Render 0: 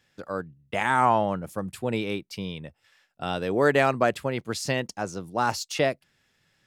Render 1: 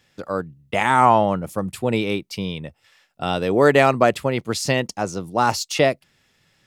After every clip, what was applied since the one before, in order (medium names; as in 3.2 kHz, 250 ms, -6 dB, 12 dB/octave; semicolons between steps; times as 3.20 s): peaking EQ 1.6 kHz -5.5 dB 0.21 oct; trim +6.5 dB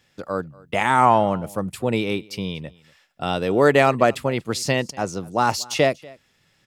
delay 239 ms -23.5 dB; trim -1 dB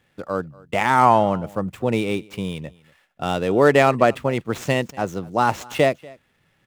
median filter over 9 samples; trim +1 dB